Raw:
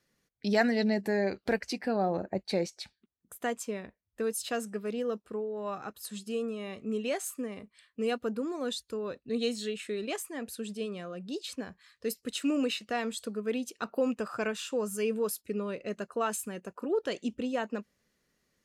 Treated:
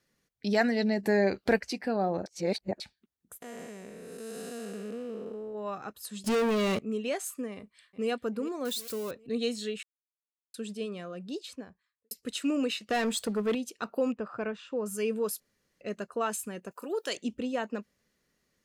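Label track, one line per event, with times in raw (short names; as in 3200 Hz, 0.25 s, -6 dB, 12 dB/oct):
1.030000	1.600000	gain +4 dB
2.260000	2.800000	reverse
3.420000	5.550000	time blur width 0.479 s
6.240000	6.790000	sample leveller passes 5
7.540000	8.090000	echo throw 0.39 s, feedback 40%, level -13 dB
8.650000	9.110000	switching spikes of -32 dBFS
9.830000	10.540000	mute
11.230000	12.110000	studio fade out
12.900000	13.550000	sample leveller passes 2
14.120000	14.860000	tape spacing loss at 10 kHz 29 dB
15.400000	15.810000	room tone
16.710000	17.170000	RIAA curve recording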